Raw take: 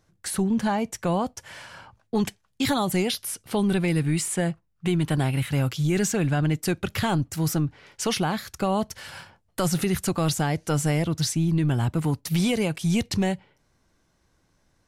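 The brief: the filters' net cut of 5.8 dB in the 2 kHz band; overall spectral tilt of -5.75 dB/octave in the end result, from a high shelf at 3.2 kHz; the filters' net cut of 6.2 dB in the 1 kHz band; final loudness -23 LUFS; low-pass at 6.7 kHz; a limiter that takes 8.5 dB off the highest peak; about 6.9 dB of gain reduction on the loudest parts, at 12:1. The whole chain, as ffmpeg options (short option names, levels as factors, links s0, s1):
-af "lowpass=6700,equalizer=f=1000:t=o:g=-7.5,equalizer=f=2000:t=o:g=-3.5,highshelf=f=3200:g=-4.5,acompressor=threshold=0.0447:ratio=12,volume=4.22,alimiter=limit=0.188:level=0:latency=1"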